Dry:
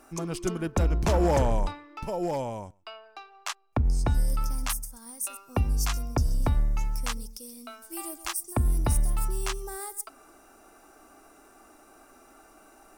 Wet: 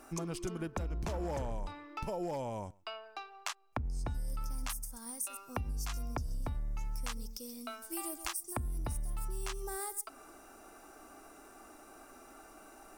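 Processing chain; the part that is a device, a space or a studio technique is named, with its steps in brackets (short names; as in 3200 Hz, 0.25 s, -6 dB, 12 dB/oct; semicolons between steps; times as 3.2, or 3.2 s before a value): serial compression, leveller first (compressor 2.5:1, threshold -25 dBFS, peak gain reduction 4 dB; compressor 5:1, threshold -35 dBFS, peak gain reduction 10.5 dB); 7.2–7.61 bell 10000 Hz -12.5 dB 0.29 oct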